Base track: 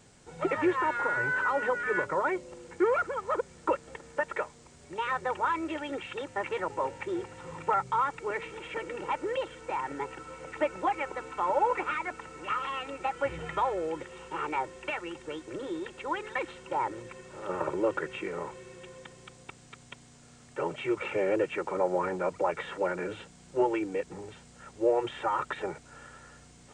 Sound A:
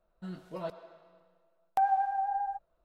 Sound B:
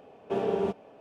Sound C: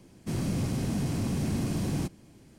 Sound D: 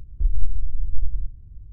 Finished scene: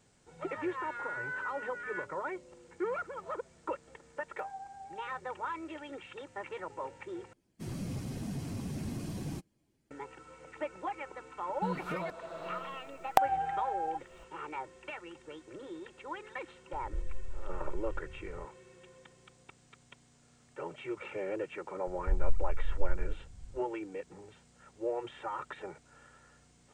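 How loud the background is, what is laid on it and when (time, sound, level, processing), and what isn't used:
base track −9 dB
0:02.62: mix in A −17 dB
0:07.33: overwrite with C −6.5 dB + spectral dynamics exaggerated over time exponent 1.5
0:11.40: mix in A −4.5 dB + camcorder AGC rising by 58 dB per second, up to +23 dB
0:16.73: mix in D −6 dB + downward compressor 2 to 1, threshold −32 dBFS
0:21.87: mix in D −8.5 dB
not used: B

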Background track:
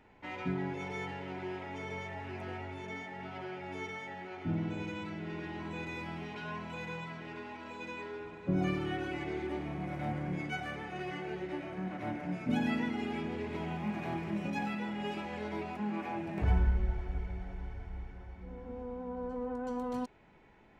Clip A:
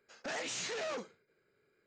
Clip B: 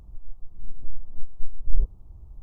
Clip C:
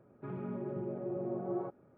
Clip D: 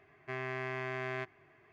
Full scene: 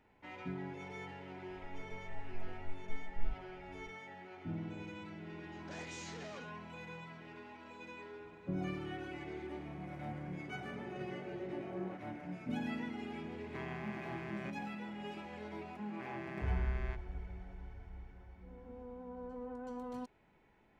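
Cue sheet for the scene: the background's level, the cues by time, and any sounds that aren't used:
background track −7.5 dB
0:01.49: mix in B −16.5 dB
0:05.43: mix in A −11.5 dB + notch filter 2,600 Hz
0:10.25: mix in C −7.5 dB
0:13.26: mix in D −8.5 dB + speech leveller
0:15.71: mix in D −10 dB

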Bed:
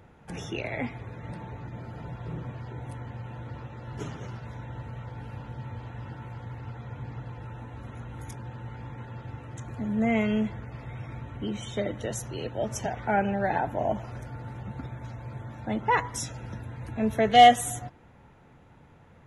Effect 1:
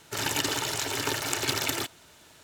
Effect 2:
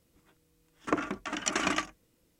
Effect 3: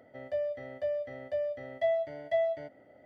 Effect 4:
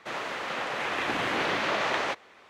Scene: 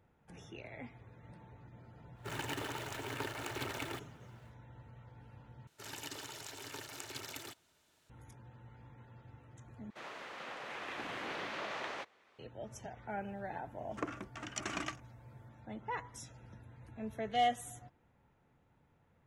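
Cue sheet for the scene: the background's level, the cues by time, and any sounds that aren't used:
bed −16 dB
0:02.13: mix in 1 −9 dB, fades 0.10 s + running median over 9 samples
0:05.67: overwrite with 1 −17.5 dB
0:09.90: overwrite with 4 −13.5 dB
0:13.10: mix in 2 −10.5 dB
not used: 3

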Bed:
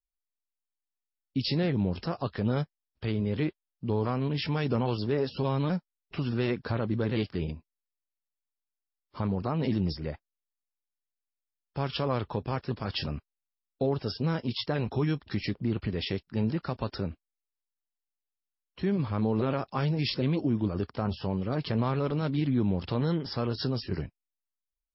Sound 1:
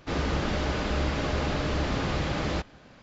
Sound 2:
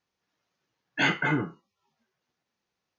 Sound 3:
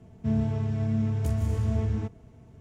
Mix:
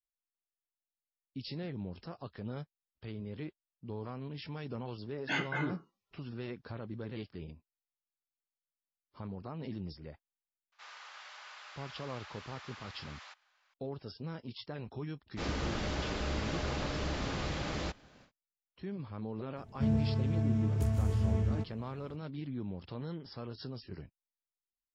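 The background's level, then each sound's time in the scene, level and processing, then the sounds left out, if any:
bed −13 dB
0:04.30: mix in 2 −9.5 dB
0:10.72: mix in 1 −15 dB + high-pass filter 940 Hz 24 dB per octave
0:15.30: mix in 1 −8 dB, fades 0.10 s + high-shelf EQ 4,400 Hz +6.5 dB
0:19.56: mix in 3 −3.5 dB

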